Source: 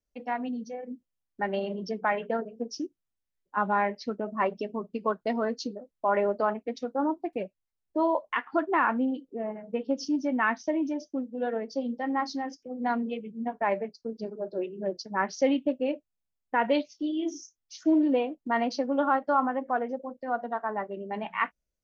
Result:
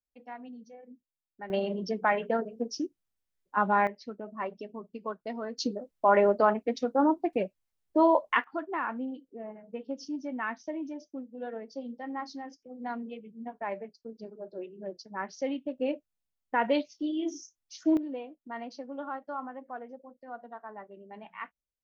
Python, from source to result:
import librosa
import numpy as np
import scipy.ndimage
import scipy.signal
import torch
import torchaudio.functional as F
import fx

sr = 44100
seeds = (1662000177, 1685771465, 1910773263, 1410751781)

y = fx.gain(x, sr, db=fx.steps((0.0, -12.0), (1.5, 1.0), (3.87, -8.0), (5.58, 3.5), (8.44, -8.0), (15.78, -1.5), (17.97, -12.5)))